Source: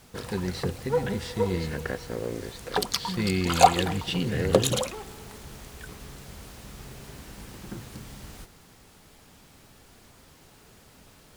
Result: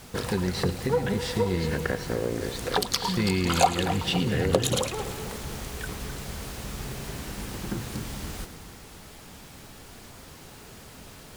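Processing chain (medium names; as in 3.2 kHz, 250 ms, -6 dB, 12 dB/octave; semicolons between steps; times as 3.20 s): compression 2:1, threshold -34 dBFS, peak gain reduction 13.5 dB; on a send: two-band feedback delay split 2.4 kHz, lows 260 ms, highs 109 ms, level -13 dB; on the sum: trim +7.5 dB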